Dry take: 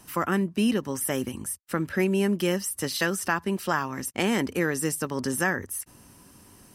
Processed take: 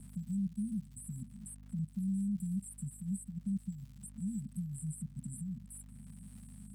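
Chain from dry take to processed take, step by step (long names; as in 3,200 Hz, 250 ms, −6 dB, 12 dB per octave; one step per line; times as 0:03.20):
high-pass filter 170 Hz 24 dB per octave
parametric band 500 Hz −14.5 dB 2.1 octaves
output level in coarse steps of 19 dB
linear-phase brick-wall band-stop 230–7,600 Hz
mains hum 50 Hz, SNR 20 dB
high-frequency loss of the air 120 metres
surface crackle 220 per second −66 dBFS
multiband upward and downward compressor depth 40%
level +7.5 dB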